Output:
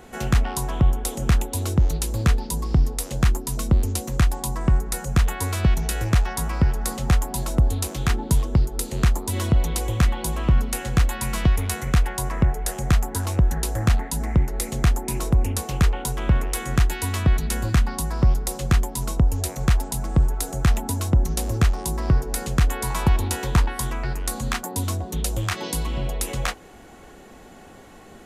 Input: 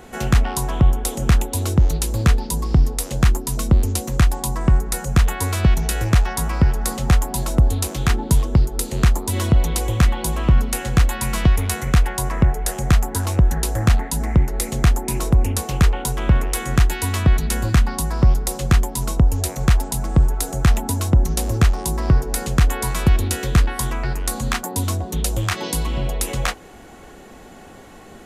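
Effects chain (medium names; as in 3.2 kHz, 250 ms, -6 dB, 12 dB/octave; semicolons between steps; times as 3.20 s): 22.90–23.68 s: peaking EQ 910 Hz +11.5 dB 0.43 oct; trim -3.5 dB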